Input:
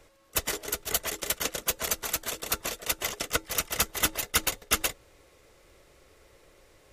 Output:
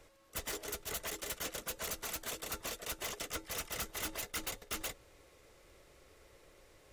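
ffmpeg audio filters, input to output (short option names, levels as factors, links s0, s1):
-af "asoftclip=type=tanh:threshold=0.0266,volume=0.668"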